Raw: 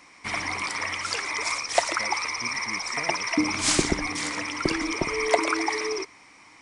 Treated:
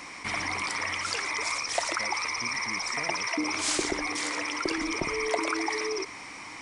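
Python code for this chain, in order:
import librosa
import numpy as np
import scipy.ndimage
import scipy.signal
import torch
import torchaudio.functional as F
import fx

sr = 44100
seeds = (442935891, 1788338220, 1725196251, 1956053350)

y = fx.low_shelf_res(x, sr, hz=270.0, db=-8.5, q=1.5, at=(3.27, 4.78))
y = fx.env_flatten(y, sr, amount_pct=50)
y = F.gain(torch.from_numpy(y), -8.0).numpy()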